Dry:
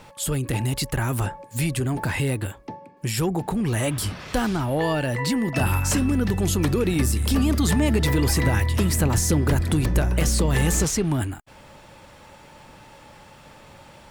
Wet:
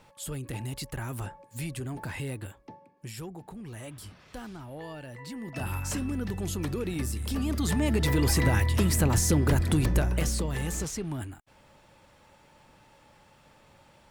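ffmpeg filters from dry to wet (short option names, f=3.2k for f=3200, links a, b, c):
-af "volume=4dB,afade=t=out:st=2.72:d=0.62:silence=0.446684,afade=t=in:st=5.26:d=0.54:silence=0.398107,afade=t=in:st=7.34:d=1:silence=0.446684,afade=t=out:st=9.87:d=0.67:silence=0.398107"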